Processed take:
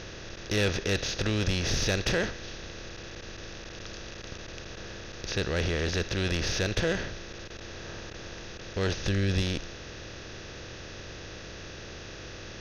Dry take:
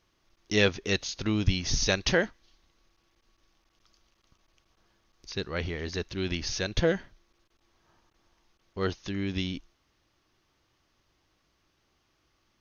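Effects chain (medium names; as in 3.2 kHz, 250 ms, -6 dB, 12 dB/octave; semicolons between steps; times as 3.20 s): spectral levelling over time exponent 0.4; 8.97–9.42 s: bass shelf 180 Hz +6.5 dB; saturation -14 dBFS, distortion -17 dB; trim -4.5 dB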